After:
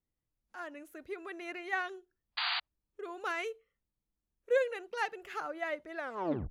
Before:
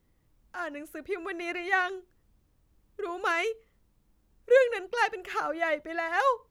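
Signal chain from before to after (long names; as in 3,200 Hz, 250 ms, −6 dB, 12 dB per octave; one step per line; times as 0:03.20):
turntable brake at the end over 0.55 s
sound drawn into the spectrogram noise, 0:02.37–0:02.60, 680–4,800 Hz −25 dBFS
noise reduction from a noise print of the clip's start 13 dB
level −8 dB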